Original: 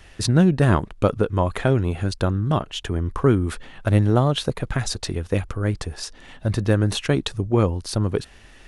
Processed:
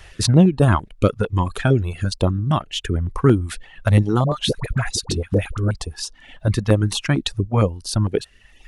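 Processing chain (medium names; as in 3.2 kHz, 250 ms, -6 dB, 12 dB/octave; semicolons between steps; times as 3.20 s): reverb removal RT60 1.3 s; 4.24–5.71 s: phase dispersion highs, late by 74 ms, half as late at 760 Hz; step-sequenced notch 8.8 Hz 250–2000 Hz; trim +4.5 dB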